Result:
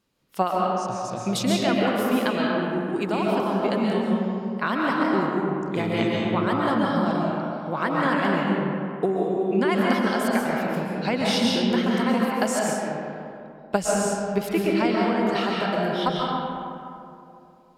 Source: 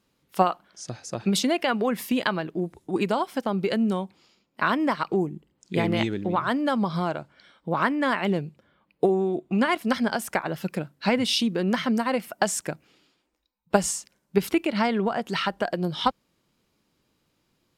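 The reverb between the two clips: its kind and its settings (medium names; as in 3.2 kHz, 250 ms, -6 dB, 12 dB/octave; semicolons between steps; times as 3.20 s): algorithmic reverb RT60 2.7 s, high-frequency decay 0.45×, pre-delay 95 ms, DRR -3.5 dB; trim -3 dB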